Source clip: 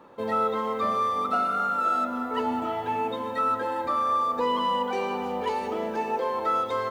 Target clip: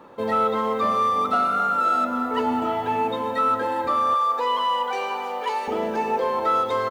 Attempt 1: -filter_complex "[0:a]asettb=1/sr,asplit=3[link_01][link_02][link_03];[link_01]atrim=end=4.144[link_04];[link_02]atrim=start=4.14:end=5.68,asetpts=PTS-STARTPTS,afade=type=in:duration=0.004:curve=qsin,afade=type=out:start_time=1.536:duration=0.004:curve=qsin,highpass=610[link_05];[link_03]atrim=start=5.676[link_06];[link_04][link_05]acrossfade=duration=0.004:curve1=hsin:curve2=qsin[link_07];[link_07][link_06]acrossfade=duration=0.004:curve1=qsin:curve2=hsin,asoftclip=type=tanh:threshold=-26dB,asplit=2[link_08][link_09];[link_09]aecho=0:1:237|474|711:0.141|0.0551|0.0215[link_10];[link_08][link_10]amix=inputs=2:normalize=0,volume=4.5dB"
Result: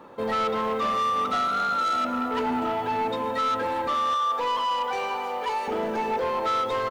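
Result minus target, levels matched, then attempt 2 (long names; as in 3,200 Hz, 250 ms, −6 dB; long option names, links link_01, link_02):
soft clipping: distortion +16 dB
-filter_complex "[0:a]asettb=1/sr,asplit=3[link_01][link_02][link_03];[link_01]atrim=end=4.144[link_04];[link_02]atrim=start=4.14:end=5.68,asetpts=PTS-STARTPTS,afade=type=in:duration=0.004:curve=qsin,afade=type=out:start_time=1.536:duration=0.004:curve=qsin,highpass=610[link_05];[link_03]atrim=start=5.676[link_06];[link_04][link_05]acrossfade=duration=0.004:curve1=hsin:curve2=qsin[link_07];[link_07][link_06]acrossfade=duration=0.004:curve1=qsin:curve2=hsin,asoftclip=type=tanh:threshold=-14.5dB,asplit=2[link_08][link_09];[link_09]aecho=0:1:237|474|711:0.141|0.0551|0.0215[link_10];[link_08][link_10]amix=inputs=2:normalize=0,volume=4.5dB"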